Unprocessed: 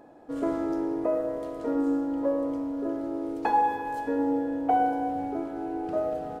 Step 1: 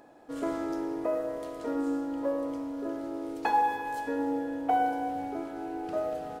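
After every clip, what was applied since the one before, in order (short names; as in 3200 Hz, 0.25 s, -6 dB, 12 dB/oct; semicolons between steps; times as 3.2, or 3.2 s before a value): tilt shelf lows -5 dB, about 1300 Hz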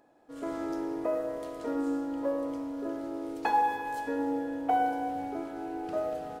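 AGC gain up to 8.5 dB; gain -9 dB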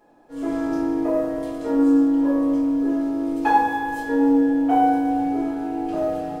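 shoebox room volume 51 m³, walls mixed, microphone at 1.4 m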